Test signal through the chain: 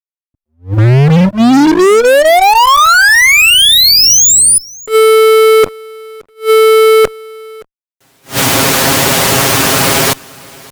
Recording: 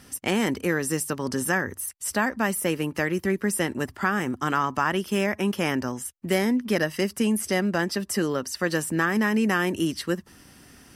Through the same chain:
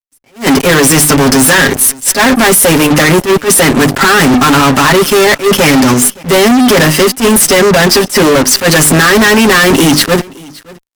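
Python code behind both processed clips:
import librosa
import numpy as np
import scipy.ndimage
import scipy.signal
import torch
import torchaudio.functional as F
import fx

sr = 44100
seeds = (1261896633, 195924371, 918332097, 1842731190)

p1 = scipy.signal.sosfilt(scipy.signal.butter(2, 120.0, 'highpass', fs=sr, output='sos'), x)
p2 = fx.hum_notches(p1, sr, base_hz=50, count=7)
p3 = p2 + 0.76 * np.pad(p2, (int(7.4 * sr / 1000.0), 0))[:len(p2)]
p4 = fx.level_steps(p3, sr, step_db=16)
p5 = p3 + F.gain(torch.from_numpy(p4), 3.0).numpy()
p6 = fx.fuzz(p5, sr, gain_db=35.0, gate_db=-37.0)
p7 = p6 + fx.echo_single(p6, sr, ms=570, db=-23.5, dry=0)
p8 = fx.attack_slew(p7, sr, db_per_s=260.0)
y = F.gain(torch.from_numpy(p8), 8.5).numpy()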